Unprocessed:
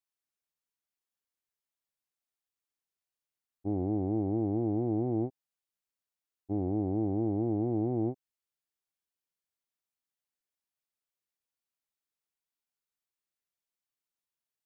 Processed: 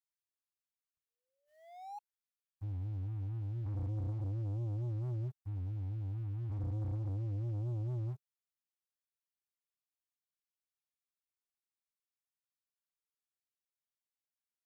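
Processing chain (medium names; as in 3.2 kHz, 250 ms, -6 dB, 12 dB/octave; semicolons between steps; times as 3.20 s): peak limiter -24 dBFS, peak gain reduction 3.5 dB; flange 1.3 Hz, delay 9.3 ms, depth 1.6 ms, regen -21%; reverse echo 1037 ms -5.5 dB; painted sound rise, 0.97–1.99 s, 420–840 Hz -42 dBFS; elliptic band-stop 130–1100 Hz, stop band 70 dB; waveshaping leveller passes 3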